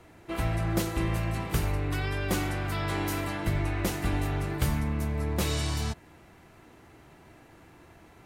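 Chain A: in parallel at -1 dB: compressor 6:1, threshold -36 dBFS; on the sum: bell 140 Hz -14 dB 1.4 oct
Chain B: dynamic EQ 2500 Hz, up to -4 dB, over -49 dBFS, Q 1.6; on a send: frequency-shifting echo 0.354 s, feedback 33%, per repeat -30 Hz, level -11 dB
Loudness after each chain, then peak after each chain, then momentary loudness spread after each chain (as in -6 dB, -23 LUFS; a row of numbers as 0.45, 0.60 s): -31.5, -30.0 LUFS; -14.0, -12.5 dBFS; 21, 4 LU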